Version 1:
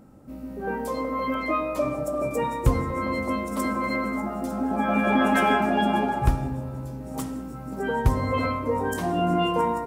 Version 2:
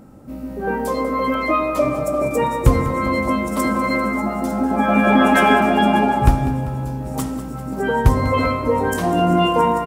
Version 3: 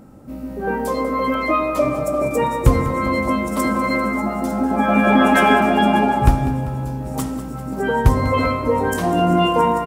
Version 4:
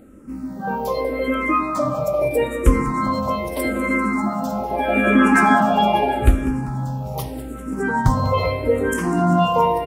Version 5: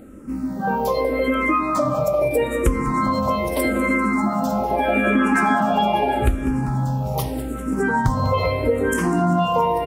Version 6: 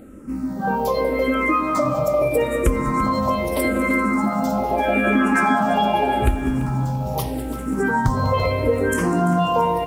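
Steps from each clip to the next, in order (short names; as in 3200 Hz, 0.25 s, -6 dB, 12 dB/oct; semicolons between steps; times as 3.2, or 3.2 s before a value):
feedback echo 0.197 s, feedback 58%, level -14 dB; gain +7 dB
nothing audible
endless phaser -0.8 Hz; gain +1.5 dB
compressor 3:1, threshold -21 dBFS, peak gain reduction 11 dB; gain +4 dB
lo-fi delay 0.339 s, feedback 35%, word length 7-bit, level -14 dB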